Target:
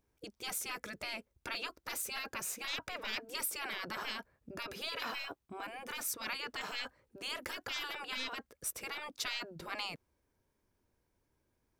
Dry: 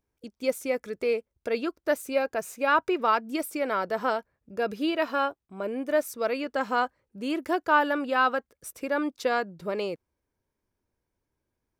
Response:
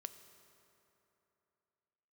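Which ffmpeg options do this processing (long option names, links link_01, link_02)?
-af "aeval=exprs='0.316*(cos(1*acos(clip(val(0)/0.316,-1,1)))-cos(1*PI/2))+0.00355*(cos(4*acos(clip(val(0)/0.316,-1,1)))-cos(4*PI/2))+0.0158*(cos(5*acos(clip(val(0)/0.316,-1,1)))-cos(5*PI/2))':channel_layout=same,afftfilt=real='re*lt(hypot(re,im),0.0708)':imag='im*lt(hypot(re,im),0.0708)':win_size=1024:overlap=0.75,volume=1dB"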